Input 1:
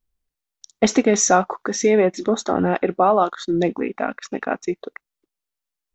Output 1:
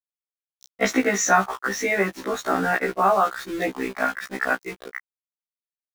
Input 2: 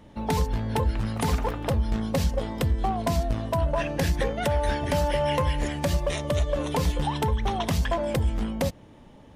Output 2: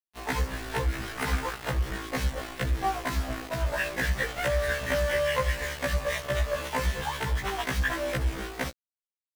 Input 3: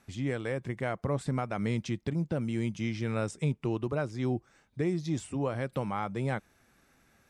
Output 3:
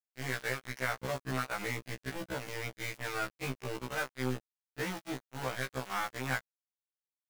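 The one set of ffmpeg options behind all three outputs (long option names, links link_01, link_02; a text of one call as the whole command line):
ffmpeg -i in.wav -af "equalizer=frequency=1700:width=1.2:gain=13.5,aeval=exprs='val(0)*gte(abs(val(0)),0.0473)':channel_layout=same,afftfilt=real='re*1.73*eq(mod(b,3),0)':imag='im*1.73*eq(mod(b,3),0)':win_size=2048:overlap=0.75,volume=-3.5dB" out.wav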